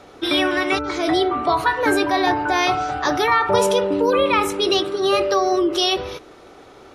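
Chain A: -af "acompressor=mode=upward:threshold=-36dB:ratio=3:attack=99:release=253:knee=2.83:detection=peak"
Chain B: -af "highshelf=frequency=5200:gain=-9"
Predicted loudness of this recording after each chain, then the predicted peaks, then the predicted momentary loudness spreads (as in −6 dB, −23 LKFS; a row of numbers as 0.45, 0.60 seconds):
−19.0, −19.5 LKFS; −4.5, −6.0 dBFS; 4, 4 LU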